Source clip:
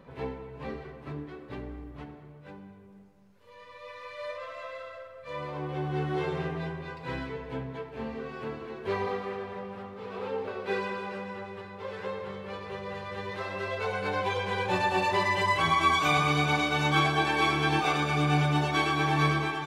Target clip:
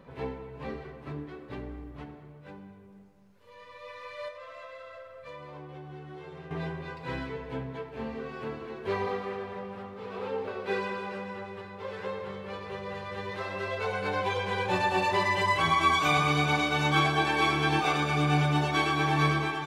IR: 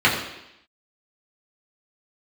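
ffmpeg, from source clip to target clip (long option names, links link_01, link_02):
-filter_complex "[0:a]asettb=1/sr,asplit=3[link_01][link_02][link_03];[link_01]atrim=end=4.284[link_04];[link_02]atrim=start=4.28:end=6.51,asetpts=PTS-STARTPTS,afade=type=in:duration=0.004:curve=qsin,afade=type=out:start_time=2.226:duration=0.004:curve=qsin,acompressor=threshold=-41dB:ratio=10[link_05];[link_03]atrim=start=6.506[link_06];[link_04][link_05]acrossfade=duration=0.004:curve1=hsin:curve2=qsin[link_07];[link_07][link_06]acrossfade=duration=0.004:curve1=qsin:curve2=hsin"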